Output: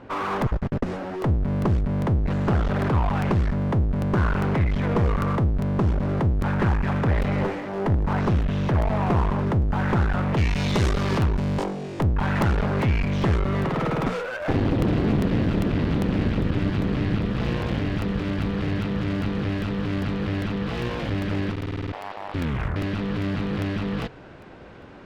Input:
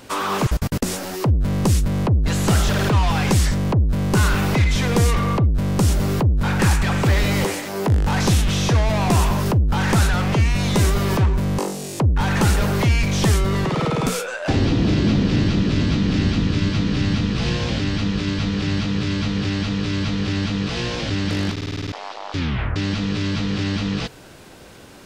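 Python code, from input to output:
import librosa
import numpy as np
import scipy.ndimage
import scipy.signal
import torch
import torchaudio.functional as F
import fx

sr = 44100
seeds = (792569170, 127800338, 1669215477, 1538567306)

y = fx.lowpass(x, sr, hz=fx.steps((0.0, 1500.0), (10.37, 4700.0), (11.64, 2100.0)), slope=12)
y = fx.clip_asym(y, sr, top_db=-29.5, bottom_db=-10.5)
y = fx.buffer_crackle(y, sr, first_s=0.42, period_s=0.4, block=64, kind='repeat')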